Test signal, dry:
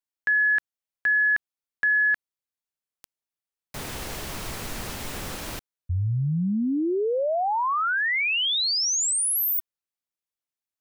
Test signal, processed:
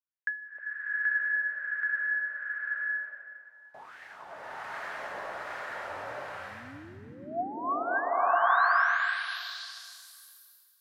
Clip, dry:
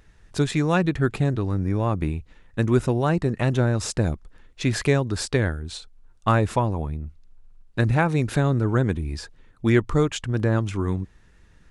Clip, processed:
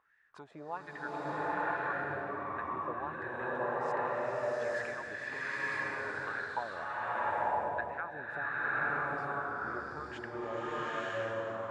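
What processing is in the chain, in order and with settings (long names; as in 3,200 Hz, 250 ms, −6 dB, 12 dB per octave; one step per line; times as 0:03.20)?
downward compressor 2.5 to 1, threshold −27 dBFS
LFO wah 1.3 Hz 580–1,800 Hz, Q 6.2
slow-attack reverb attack 970 ms, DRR −10.5 dB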